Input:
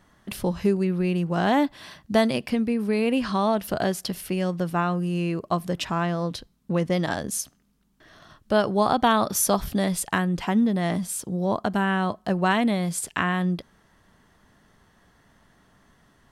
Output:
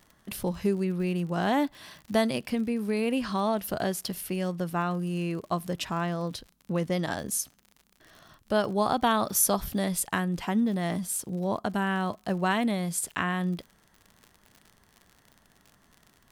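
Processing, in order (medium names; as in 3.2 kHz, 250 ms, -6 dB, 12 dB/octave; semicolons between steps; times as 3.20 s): treble shelf 11 kHz +11 dB; crackle 71 per s -35 dBFS; trim -4.5 dB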